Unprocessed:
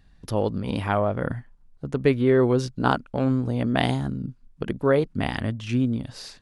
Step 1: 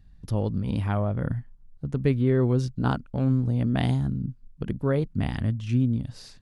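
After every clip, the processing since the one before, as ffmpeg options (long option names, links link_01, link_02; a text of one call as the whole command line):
ffmpeg -i in.wav -af "bass=frequency=250:gain=12,treble=frequency=4000:gain=2,volume=-8dB" out.wav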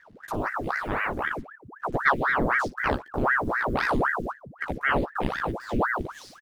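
ffmpeg -i in.wav -af "acrusher=bits=8:mix=0:aa=0.5,aecho=1:1:14|58:0.668|0.141,aeval=exprs='val(0)*sin(2*PI*940*n/s+940*0.9/3.9*sin(2*PI*3.9*n/s))':channel_layout=same" out.wav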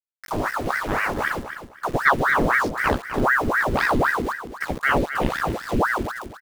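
ffmpeg -i in.wav -af "aeval=exprs='val(0)*gte(abs(val(0)),0.015)':channel_layout=same,aecho=1:1:255|510|765:0.316|0.0727|0.0167,volume=4dB" out.wav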